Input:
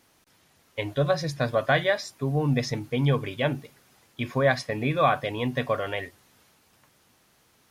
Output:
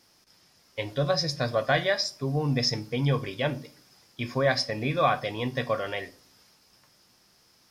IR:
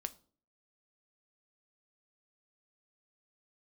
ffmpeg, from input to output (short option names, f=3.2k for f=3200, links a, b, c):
-filter_complex "[0:a]equalizer=f=5.1k:t=o:w=0.37:g=14[a];[1:a]atrim=start_sample=2205[b];[a][b]afir=irnorm=-1:irlink=0"